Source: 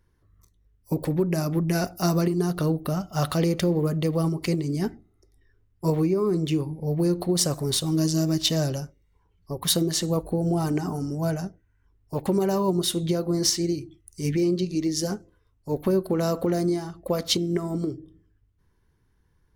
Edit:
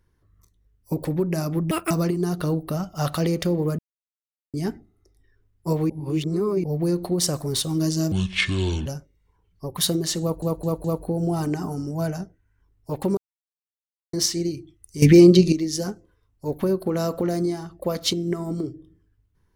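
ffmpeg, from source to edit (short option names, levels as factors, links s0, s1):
-filter_complex "[0:a]asplit=16[s0][s1][s2][s3][s4][s5][s6][s7][s8][s9][s10][s11][s12][s13][s14][s15];[s0]atrim=end=1.714[s16];[s1]atrim=start=1.71:end=2.08,asetpts=PTS-STARTPTS,asetrate=82908,aresample=44100,atrim=end_sample=8679,asetpts=PTS-STARTPTS[s17];[s2]atrim=start=2.076:end=3.96,asetpts=PTS-STARTPTS,afade=t=out:st=1.88:d=0.004:c=hsin[s18];[s3]atrim=start=3.96:end=4.71,asetpts=PTS-STARTPTS,volume=0[s19];[s4]atrim=start=4.71:end=6.072,asetpts=PTS-STARTPTS,afade=t=in:d=0.004:c=hsin[s20];[s5]atrim=start=6.068:end=6.812,asetpts=PTS-STARTPTS,areverse[s21];[s6]atrim=start=6.808:end=8.294[s22];[s7]atrim=start=8.29:end=8.73,asetpts=PTS-STARTPTS,asetrate=26019,aresample=44100,atrim=end_sample=32888,asetpts=PTS-STARTPTS[s23];[s8]atrim=start=8.726:end=10.292[s24];[s9]atrim=start=10.078:end=10.292[s25];[s10]atrim=start=10.078:end=10.292[s26];[s11]atrim=start=10.078:end=12.41,asetpts=PTS-STARTPTS,afade=t=out:st=2.328:d=0.004:c=hsin[s27];[s12]atrim=start=12.41:end=13.37,asetpts=PTS-STARTPTS,volume=0[s28];[s13]atrim=start=13.37:end=14.262,asetpts=PTS-STARTPTS,afade=t=in:d=0.004:c=hsin[s29];[s14]atrim=start=14.258:end=14.762,asetpts=PTS-STARTPTS,volume=3.98[s30];[s15]atrim=start=14.758[s31];[s16][s17]acrossfade=d=0.004:c1=hsin:c2=hsin[s32];[s18][s19][s20]concat=n=3:v=0:a=1[s33];[s32][s33]acrossfade=d=0.004:c1=hsin:c2=hsin[s34];[s34][s21]acrossfade=d=0.004:c1=hsin:c2=hsin[s35];[s35][s22]acrossfade=d=0.004:c1=hsin:c2=hsin[s36];[s36][s23]acrossfade=d=0.004:c1=hsin:c2=hsin[s37];[s37][s24]acrossfade=d=0.004:c1=hsin:c2=hsin[s38];[s38][s25]acrossfade=d=0.004:c1=hsin:c2=hsin[s39];[s39][s26]acrossfade=d=0.004:c1=hsin:c2=hsin[s40];[s27][s28][s29]concat=n=3:v=0:a=1[s41];[s40][s41]acrossfade=d=0.004:c1=hsin:c2=hsin[s42];[s42][s30]acrossfade=d=0.004:c1=hsin:c2=hsin[s43];[s43][s31]acrossfade=d=0.004:c1=hsin:c2=hsin"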